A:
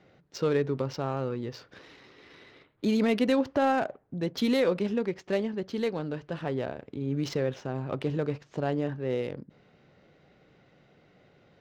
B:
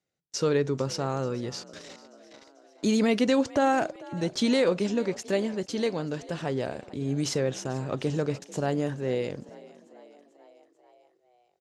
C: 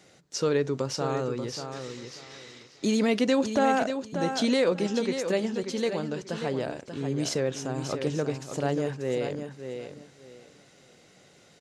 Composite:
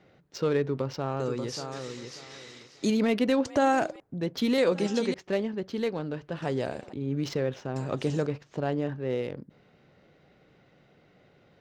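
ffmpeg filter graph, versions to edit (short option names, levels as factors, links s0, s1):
-filter_complex "[2:a]asplit=2[s0][s1];[1:a]asplit=3[s2][s3][s4];[0:a]asplit=6[s5][s6][s7][s8][s9][s10];[s5]atrim=end=1.202[s11];[s0]atrim=start=1.198:end=2.902[s12];[s6]atrim=start=2.898:end=3.452[s13];[s2]atrim=start=3.448:end=4.002[s14];[s7]atrim=start=3.998:end=4.582[s15];[s1]atrim=start=4.578:end=5.142[s16];[s8]atrim=start=5.138:end=6.422[s17];[s3]atrim=start=6.418:end=6.932[s18];[s9]atrim=start=6.928:end=7.762[s19];[s4]atrim=start=7.758:end=8.272[s20];[s10]atrim=start=8.268[s21];[s11][s12]acrossfade=d=0.004:c1=hsin:c2=hsin[s22];[s22][s13]acrossfade=d=0.004:c1=hsin:c2=hsin[s23];[s23][s14]acrossfade=d=0.004:c1=hsin:c2=hsin[s24];[s24][s15]acrossfade=d=0.004:c1=hsin:c2=hsin[s25];[s25][s16]acrossfade=d=0.004:c1=hsin:c2=hsin[s26];[s26][s17]acrossfade=d=0.004:c1=hsin:c2=hsin[s27];[s27][s18]acrossfade=d=0.004:c1=hsin:c2=hsin[s28];[s28][s19]acrossfade=d=0.004:c1=hsin:c2=hsin[s29];[s29][s20]acrossfade=d=0.004:c1=hsin:c2=hsin[s30];[s30][s21]acrossfade=d=0.004:c1=hsin:c2=hsin"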